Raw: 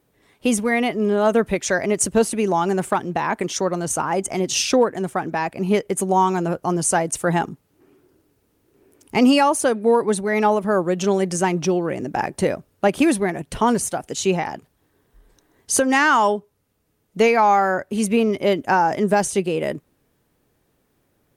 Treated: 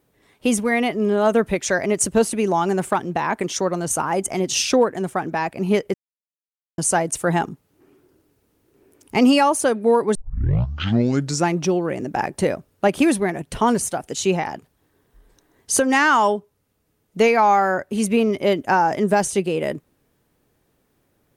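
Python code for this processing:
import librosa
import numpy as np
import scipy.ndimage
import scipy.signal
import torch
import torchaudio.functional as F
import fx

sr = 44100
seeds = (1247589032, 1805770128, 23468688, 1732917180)

y = fx.peak_eq(x, sr, hz=11000.0, db=6.5, octaves=0.39, at=(3.91, 4.32))
y = fx.edit(y, sr, fx.silence(start_s=5.94, length_s=0.84),
    fx.tape_start(start_s=10.15, length_s=1.41), tone=tone)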